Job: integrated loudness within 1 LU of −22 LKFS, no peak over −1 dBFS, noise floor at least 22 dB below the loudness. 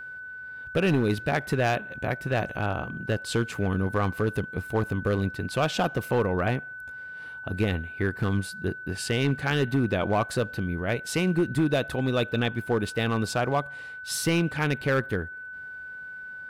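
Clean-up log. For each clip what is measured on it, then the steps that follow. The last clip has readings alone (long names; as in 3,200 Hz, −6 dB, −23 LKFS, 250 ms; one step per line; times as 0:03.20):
share of clipped samples 1.2%; peaks flattened at −16.5 dBFS; interfering tone 1,500 Hz; level of the tone −37 dBFS; integrated loudness −27.5 LKFS; sample peak −16.5 dBFS; target loudness −22.0 LKFS
→ clipped peaks rebuilt −16.5 dBFS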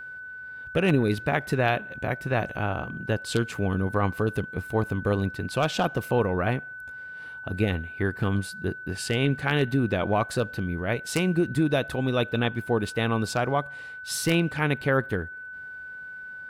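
share of clipped samples 0.0%; interfering tone 1,500 Hz; level of the tone −37 dBFS
→ notch filter 1,500 Hz, Q 30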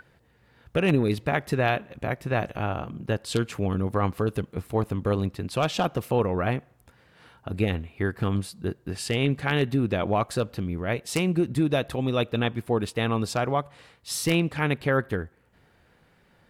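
interfering tone none found; integrated loudness −27.0 LKFS; sample peak −7.5 dBFS; target loudness −22.0 LKFS
→ level +5 dB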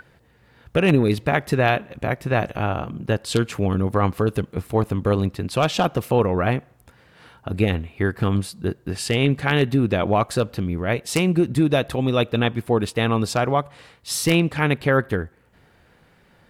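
integrated loudness −22.0 LKFS; sample peak −2.5 dBFS; background noise floor −57 dBFS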